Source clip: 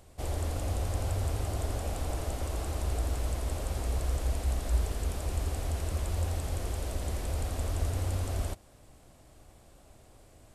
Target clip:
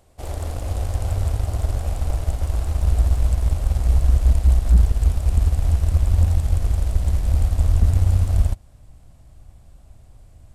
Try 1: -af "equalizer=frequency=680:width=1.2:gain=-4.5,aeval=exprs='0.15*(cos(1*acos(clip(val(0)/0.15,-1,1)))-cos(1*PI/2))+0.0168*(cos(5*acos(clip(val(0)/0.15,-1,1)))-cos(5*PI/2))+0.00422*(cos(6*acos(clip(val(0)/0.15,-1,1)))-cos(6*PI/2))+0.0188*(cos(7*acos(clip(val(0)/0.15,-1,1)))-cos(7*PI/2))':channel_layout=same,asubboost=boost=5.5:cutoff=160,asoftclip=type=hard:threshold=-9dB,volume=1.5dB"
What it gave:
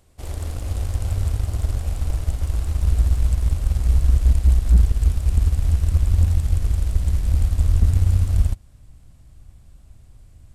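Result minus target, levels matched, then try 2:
500 Hz band −5.0 dB
-af "equalizer=frequency=680:width=1.2:gain=3,aeval=exprs='0.15*(cos(1*acos(clip(val(0)/0.15,-1,1)))-cos(1*PI/2))+0.0168*(cos(5*acos(clip(val(0)/0.15,-1,1)))-cos(5*PI/2))+0.00422*(cos(6*acos(clip(val(0)/0.15,-1,1)))-cos(6*PI/2))+0.0188*(cos(7*acos(clip(val(0)/0.15,-1,1)))-cos(7*PI/2))':channel_layout=same,asubboost=boost=5.5:cutoff=160,asoftclip=type=hard:threshold=-9dB,volume=1.5dB"

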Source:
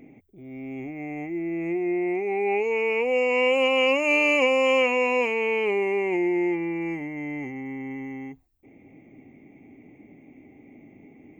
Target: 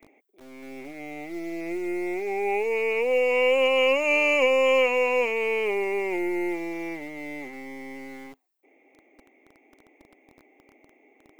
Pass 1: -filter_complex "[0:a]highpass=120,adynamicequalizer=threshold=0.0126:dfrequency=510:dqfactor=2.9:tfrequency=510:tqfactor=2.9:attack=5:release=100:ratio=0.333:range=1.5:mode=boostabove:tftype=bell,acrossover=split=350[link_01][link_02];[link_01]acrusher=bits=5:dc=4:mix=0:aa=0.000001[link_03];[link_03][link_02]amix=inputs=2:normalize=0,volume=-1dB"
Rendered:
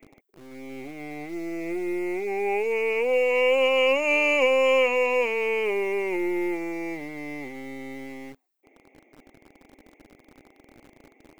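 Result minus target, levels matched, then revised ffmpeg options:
125 Hz band +3.5 dB
-filter_complex "[0:a]highpass=250,adynamicequalizer=threshold=0.0126:dfrequency=510:dqfactor=2.9:tfrequency=510:tqfactor=2.9:attack=5:release=100:ratio=0.333:range=1.5:mode=boostabove:tftype=bell,acrossover=split=350[link_01][link_02];[link_01]acrusher=bits=5:dc=4:mix=0:aa=0.000001[link_03];[link_03][link_02]amix=inputs=2:normalize=0,volume=-1dB"

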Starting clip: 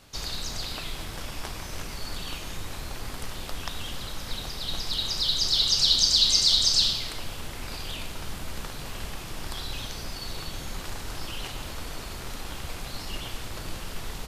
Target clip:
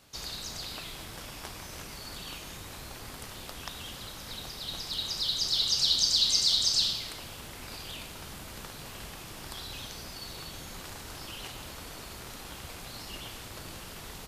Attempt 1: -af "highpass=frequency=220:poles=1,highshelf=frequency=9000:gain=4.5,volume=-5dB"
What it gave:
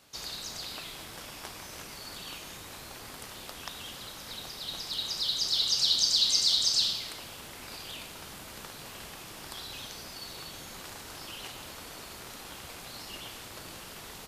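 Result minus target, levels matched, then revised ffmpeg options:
125 Hz band −5.5 dB
-af "highpass=frequency=73:poles=1,highshelf=frequency=9000:gain=4.5,volume=-5dB"

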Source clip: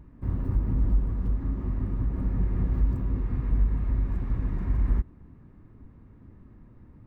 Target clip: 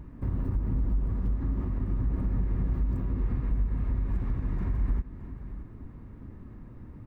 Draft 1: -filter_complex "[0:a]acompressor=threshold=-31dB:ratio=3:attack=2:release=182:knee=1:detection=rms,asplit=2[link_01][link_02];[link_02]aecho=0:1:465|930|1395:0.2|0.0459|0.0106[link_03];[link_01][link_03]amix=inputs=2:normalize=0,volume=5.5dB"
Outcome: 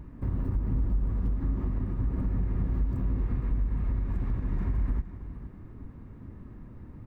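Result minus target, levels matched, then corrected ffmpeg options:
echo 156 ms early
-filter_complex "[0:a]acompressor=threshold=-31dB:ratio=3:attack=2:release=182:knee=1:detection=rms,asplit=2[link_01][link_02];[link_02]aecho=0:1:621|1242|1863:0.2|0.0459|0.0106[link_03];[link_01][link_03]amix=inputs=2:normalize=0,volume=5.5dB"

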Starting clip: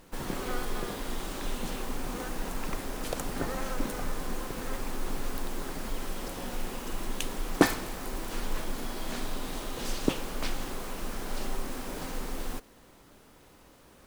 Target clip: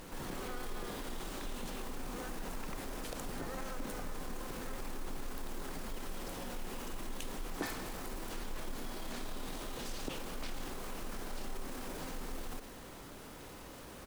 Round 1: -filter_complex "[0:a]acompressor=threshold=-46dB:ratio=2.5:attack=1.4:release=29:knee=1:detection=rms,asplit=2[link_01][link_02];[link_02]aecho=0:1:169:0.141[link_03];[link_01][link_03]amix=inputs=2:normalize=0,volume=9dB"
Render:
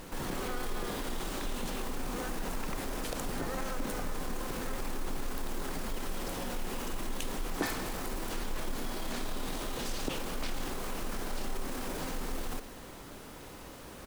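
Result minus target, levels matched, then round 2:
downward compressor: peak gain reduction −5.5 dB
-filter_complex "[0:a]acompressor=threshold=-55.5dB:ratio=2.5:attack=1.4:release=29:knee=1:detection=rms,asplit=2[link_01][link_02];[link_02]aecho=0:1:169:0.141[link_03];[link_01][link_03]amix=inputs=2:normalize=0,volume=9dB"

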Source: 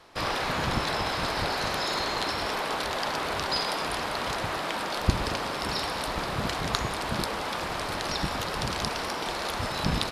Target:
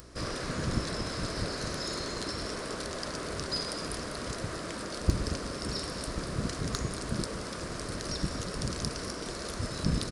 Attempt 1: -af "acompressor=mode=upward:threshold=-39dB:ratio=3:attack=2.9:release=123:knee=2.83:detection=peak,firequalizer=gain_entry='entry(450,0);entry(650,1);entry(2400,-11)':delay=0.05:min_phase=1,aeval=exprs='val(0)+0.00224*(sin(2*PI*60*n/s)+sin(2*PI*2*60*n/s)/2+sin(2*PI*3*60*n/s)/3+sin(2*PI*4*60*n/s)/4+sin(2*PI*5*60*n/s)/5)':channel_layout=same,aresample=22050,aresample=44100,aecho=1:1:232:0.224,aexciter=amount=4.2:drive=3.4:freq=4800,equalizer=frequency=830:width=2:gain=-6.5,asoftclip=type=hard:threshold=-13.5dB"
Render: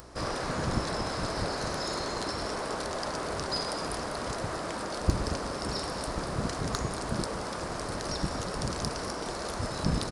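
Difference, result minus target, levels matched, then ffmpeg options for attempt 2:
1,000 Hz band +5.0 dB
-af "acompressor=mode=upward:threshold=-39dB:ratio=3:attack=2.9:release=123:knee=2.83:detection=peak,firequalizer=gain_entry='entry(450,0);entry(650,1);entry(2400,-11)':delay=0.05:min_phase=1,aeval=exprs='val(0)+0.00224*(sin(2*PI*60*n/s)+sin(2*PI*2*60*n/s)/2+sin(2*PI*3*60*n/s)/3+sin(2*PI*4*60*n/s)/4+sin(2*PI*5*60*n/s)/5)':channel_layout=same,aresample=22050,aresample=44100,aecho=1:1:232:0.224,aexciter=amount=4.2:drive=3.4:freq=4800,equalizer=frequency=830:width=2:gain=-18.5,asoftclip=type=hard:threshold=-13.5dB"

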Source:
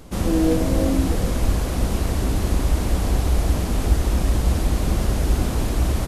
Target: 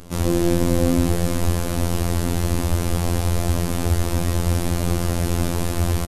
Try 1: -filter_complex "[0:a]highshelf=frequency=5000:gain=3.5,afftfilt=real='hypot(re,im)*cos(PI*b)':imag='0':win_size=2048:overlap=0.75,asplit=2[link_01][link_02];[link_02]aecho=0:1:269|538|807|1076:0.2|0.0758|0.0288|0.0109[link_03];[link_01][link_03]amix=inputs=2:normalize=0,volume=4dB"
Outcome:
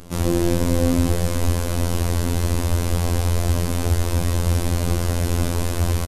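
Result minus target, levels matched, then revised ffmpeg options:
echo 89 ms late
-filter_complex "[0:a]highshelf=frequency=5000:gain=3.5,afftfilt=real='hypot(re,im)*cos(PI*b)':imag='0':win_size=2048:overlap=0.75,asplit=2[link_01][link_02];[link_02]aecho=0:1:180|360|540|720:0.2|0.0758|0.0288|0.0109[link_03];[link_01][link_03]amix=inputs=2:normalize=0,volume=4dB"

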